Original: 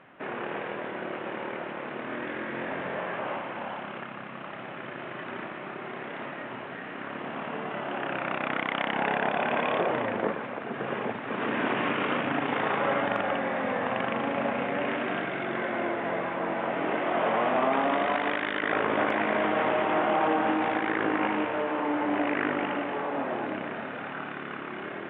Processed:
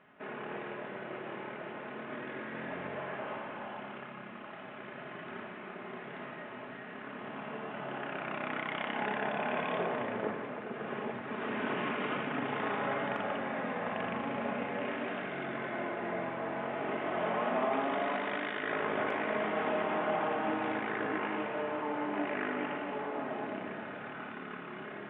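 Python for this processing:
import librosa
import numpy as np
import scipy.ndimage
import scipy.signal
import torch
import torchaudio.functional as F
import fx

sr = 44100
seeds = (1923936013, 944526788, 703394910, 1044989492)

y = fx.room_shoebox(x, sr, seeds[0], volume_m3=3100.0, walls='mixed', distance_m=1.4)
y = y * 10.0 ** (-8.5 / 20.0)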